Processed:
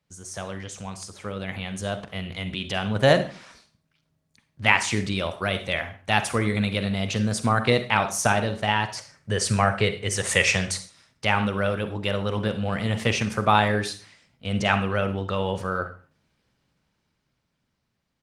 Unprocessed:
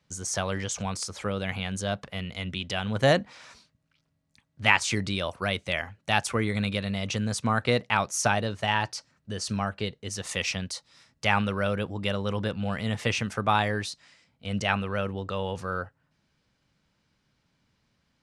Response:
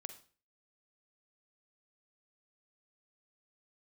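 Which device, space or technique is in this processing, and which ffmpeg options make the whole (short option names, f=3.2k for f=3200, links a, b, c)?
speakerphone in a meeting room: -filter_complex "[0:a]asplit=3[a][b][c];[a]afade=t=out:st=8.97:d=0.02[d];[b]equalizer=f=125:t=o:w=1:g=10,equalizer=f=250:t=o:w=1:g=-3,equalizer=f=500:t=o:w=1:g=8,equalizer=f=1k:t=o:w=1:g=4,equalizer=f=2k:t=o:w=1:g=11,equalizer=f=8k:t=o:w=1:g=10,afade=t=in:st=8.97:d=0.02,afade=t=out:st=10.76:d=0.02[e];[c]afade=t=in:st=10.76:d=0.02[f];[d][e][f]amix=inputs=3:normalize=0[g];[1:a]atrim=start_sample=2205[h];[g][h]afir=irnorm=-1:irlink=0,asplit=2[i][j];[j]adelay=150,highpass=300,lowpass=3.4k,asoftclip=type=hard:threshold=-17dB,volume=-29dB[k];[i][k]amix=inputs=2:normalize=0,dynaudnorm=f=120:g=31:m=11dB" -ar 48000 -c:a libopus -b:a 24k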